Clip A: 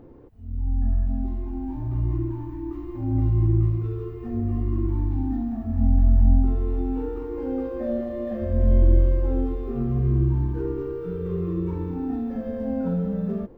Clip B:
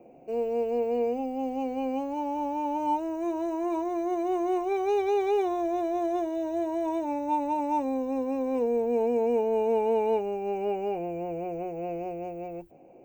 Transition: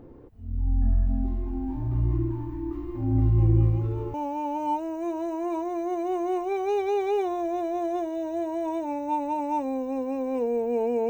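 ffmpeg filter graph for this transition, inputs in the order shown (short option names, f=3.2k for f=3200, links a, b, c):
-filter_complex "[1:a]asplit=2[a][b];[0:a]apad=whole_dur=11.09,atrim=end=11.09,atrim=end=4.142[c];[b]atrim=start=2.338:end=9.29[d];[a]atrim=start=1.58:end=2.34,asetpts=PTS-STARTPTS,volume=-13.5dB,afade=t=in:d=0.004:c=hsin,afade=t=out:st=0.756:d=0.004:c=hsin,adelay=3380[e];[c][d]acrossfade=d=0.004:c1=hsin:c2=hsin[f];[f][e]amix=inputs=2:normalize=0"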